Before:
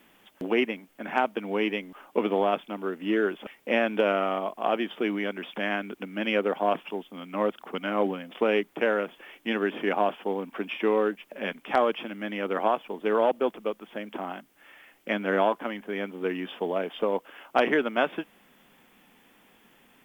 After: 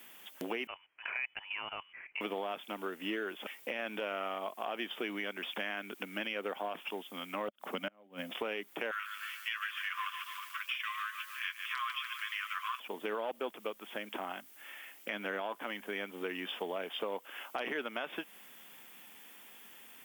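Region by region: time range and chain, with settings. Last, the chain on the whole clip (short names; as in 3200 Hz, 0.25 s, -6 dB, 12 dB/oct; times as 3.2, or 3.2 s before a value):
0.67–2.21 resonant low shelf 570 Hz -11 dB, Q 1.5 + level quantiser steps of 13 dB + inverted band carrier 3200 Hz
7.48–8.33 flipped gate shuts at -18 dBFS, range -35 dB + small resonant body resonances 210/580 Hz, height 8 dB, ringing for 25 ms
8.91–12.8 brick-wall FIR high-pass 1000 Hz + comb 6.8 ms, depth 47% + lo-fi delay 0.146 s, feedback 55%, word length 9-bit, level -10 dB
whole clip: tilt +3 dB/oct; limiter -18.5 dBFS; compressor 2.5:1, threshold -37 dBFS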